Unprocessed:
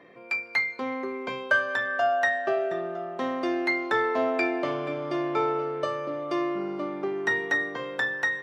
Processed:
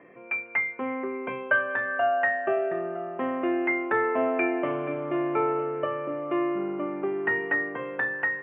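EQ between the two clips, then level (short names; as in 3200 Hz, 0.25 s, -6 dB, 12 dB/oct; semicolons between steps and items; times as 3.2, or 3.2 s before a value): steep low-pass 2900 Hz 72 dB/oct; air absorption 57 m; bell 320 Hz +2 dB; 0.0 dB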